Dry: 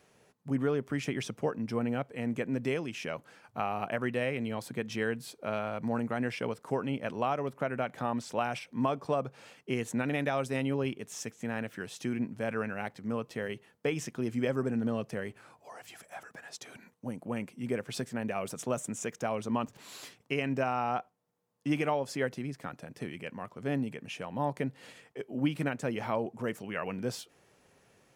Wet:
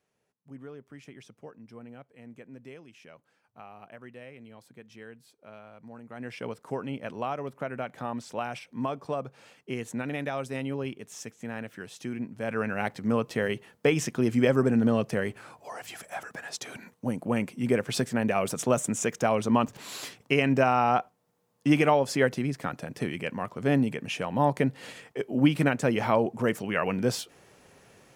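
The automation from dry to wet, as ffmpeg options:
-af "volume=8dB,afade=t=in:st=6.05:d=0.43:silence=0.223872,afade=t=in:st=12.34:d=0.58:silence=0.334965"

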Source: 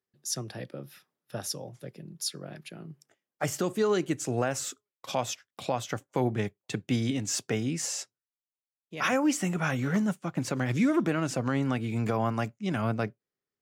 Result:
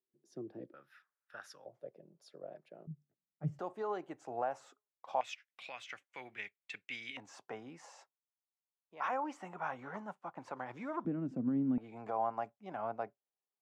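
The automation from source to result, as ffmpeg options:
-af "asetnsamples=n=441:p=0,asendcmd='0.74 bandpass f 1500;1.66 bandpass f 590;2.87 bandpass f 160;3.59 bandpass f 810;5.21 bandpass f 2300;7.17 bandpass f 900;11.05 bandpass f 240;11.78 bandpass f 790',bandpass=f=340:t=q:w=3.3:csg=0"

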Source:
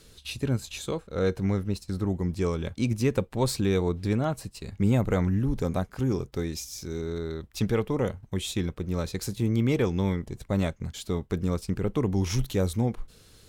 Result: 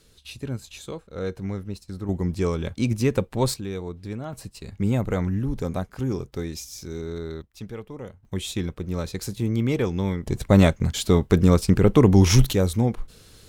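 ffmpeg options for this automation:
-af "asetnsamples=n=441:p=0,asendcmd='2.09 volume volume 3dB;3.54 volume volume -7dB;4.33 volume volume 0dB;7.42 volume volume -10.5dB;8.25 volume volume 1dB;10.26 volume volume 11dB;12.53 volume volume 4.5dB',volume=-4dB"

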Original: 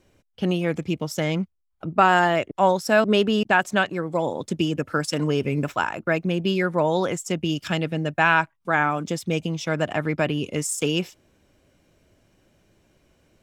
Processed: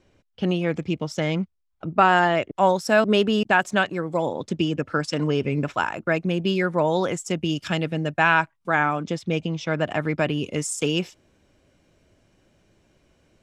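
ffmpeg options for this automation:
-af "asetnsamples=n=441:p=0,asendcmd='2.56 lowpass f 11000;4.28 lowpass f 5800;5.74 lowpass f 10000;8.97 lowpass f 4800;9.87 lowpass f 9300',lowpass=6.1k"

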